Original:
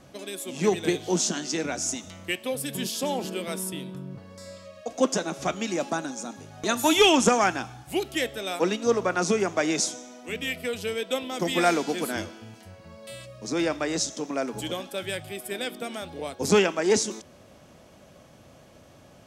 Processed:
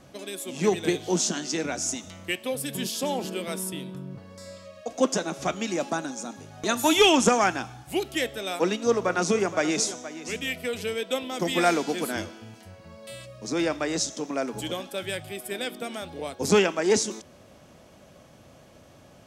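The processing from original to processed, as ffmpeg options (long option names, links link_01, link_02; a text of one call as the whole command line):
ffmpeg -i in.wav -filter_complex "[0:a]asettb=1/sr,asplit=3[link_01][link_02][link_03];[link_01]atrim=end=8.584[link_04];[link_02]atrim=start=8.58:end=10.86,asetpts=PTS-STARTPTS,afade=type=in:duration=0.004:curve=qsin,afade=type=out:start_time=2.276:duration=0.004:curve=qsin,aecho=1:1:470:0.2,atrim=end_sample=100548[link_05];[link_03]atrim=start=10.856[link_06];[link_04][link_05]acrossfade=duration=0.004:curve1=hsin:curve2=qsin[link_07];[link_07][link_06]acrossfade=duration=0.004:curve1=qsin:curve2=hsin" out.wav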